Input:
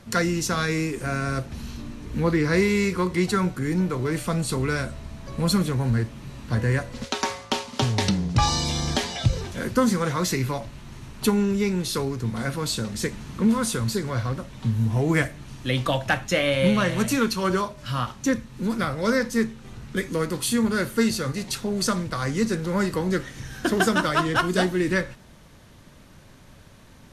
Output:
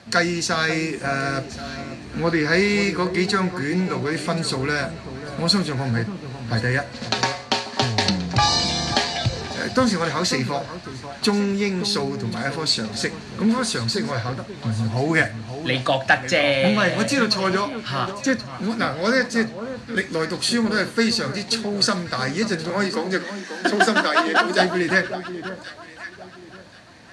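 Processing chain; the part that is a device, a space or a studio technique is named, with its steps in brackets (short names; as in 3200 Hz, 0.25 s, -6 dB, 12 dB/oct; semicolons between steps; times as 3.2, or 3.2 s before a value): car door speaker (speaker cabinet 96–9200 Hz, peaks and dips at 150 Hz -4 dB, 710 Hz +8 dB, 1700 Hz +7 dB, 2500 Hz +4 dB, 4400 Hz +10 dB); 22.7–24.6 steep high-pass 190 Hz 96 dB/oct; echo with dull and thin repeats by turns 0.54 s, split 1200 Hz, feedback 51%, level -10 dB; gain +1 dB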